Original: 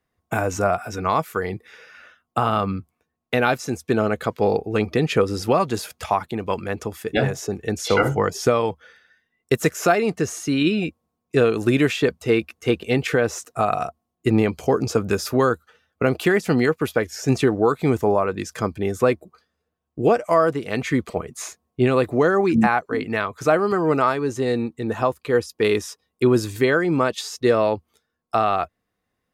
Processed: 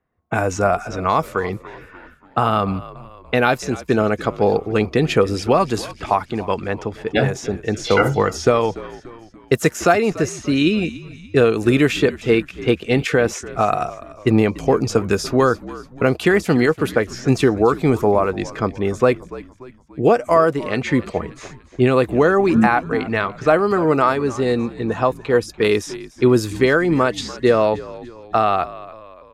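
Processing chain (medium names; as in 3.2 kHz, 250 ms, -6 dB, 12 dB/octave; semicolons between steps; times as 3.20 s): level-controlled noise filter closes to 1.8 kHz, open at -17 dBFS; frequency-shifting echo 290 ms, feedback 48%, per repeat -60 Hz, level -17.5 dB; trim +3 dB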